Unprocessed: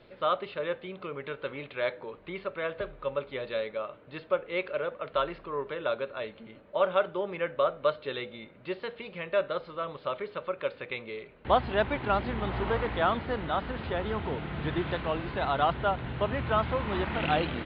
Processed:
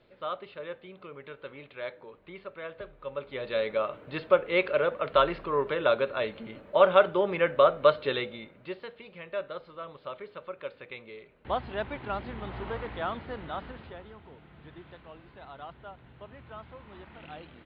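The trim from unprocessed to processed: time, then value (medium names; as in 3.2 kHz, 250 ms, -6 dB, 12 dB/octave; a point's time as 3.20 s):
2.99 s -7 dB
3.75 s +6 dB
8.10 s +6 dB
8.94 s -6.5 dB
13.65 s -6.5 dB
14.17 s -18 dB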